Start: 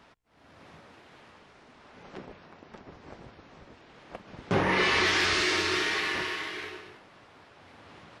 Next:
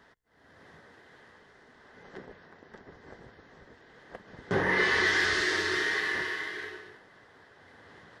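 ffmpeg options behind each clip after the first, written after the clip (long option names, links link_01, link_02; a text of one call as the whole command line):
ffmpeg -i in.wav -af "superequalizer=7b=1.58:11b=2.24:12b=0.501,volume=-4dB" out.wav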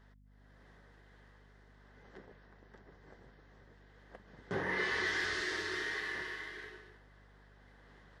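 ffmpeg -i in.wav -af "aeval=exprs='val(0)+0.00251*(sin(2*PI*50*n/s)+sin(2*PI*2*50*n/s)/2+sin(2*PI*3*50*n/s)/3+sin(2*PI*4*50*n/s)/4+sin(2*PI*5*50*n/s)/5)':channel_layout=same,volume=-9dB" out.wav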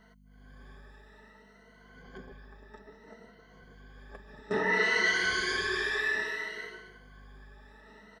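ffmpeg -i in.wav -af "afftfilt=real='re*pow(10,17/40*sin(2*PI*(1.9*log(max(b,1)*sr/1024/100)/log(2)-(0.6)*(pts-256)/sr)))':imag='im*pow(10,17/40*sin(2*PI*(1.9*log(max(b,1)*sr/1024/100)/log(2)-(0.6)*(pts-256)/sr)))':win_size=1024:overlap=0.75,aecho=1:1:4.6:0.57,volume=2.5dB" out.wav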